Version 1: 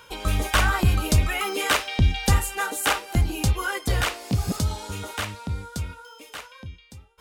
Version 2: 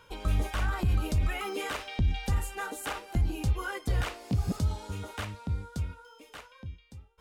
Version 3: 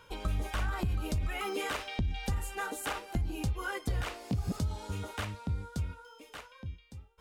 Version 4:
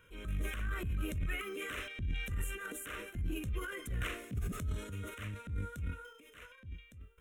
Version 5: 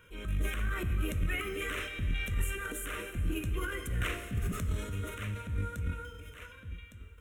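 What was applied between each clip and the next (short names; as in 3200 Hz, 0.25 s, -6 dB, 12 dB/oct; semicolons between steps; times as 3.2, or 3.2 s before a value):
limiter -16 dBFS, peak gain reduction 7.5 dB; tilt -1.5 dB/oct; gain -7.5 dB
compressor, threshold -28 dBFS, peak gain reduction 7 dB
transient shaper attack -9 dB, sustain +10 dB; fixed phaser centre 2000 Hz, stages 4; gain -3.5 dB
plate-style reverb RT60 2.8 s, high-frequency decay 0.9×, DRR 9 dB; gain +4 dB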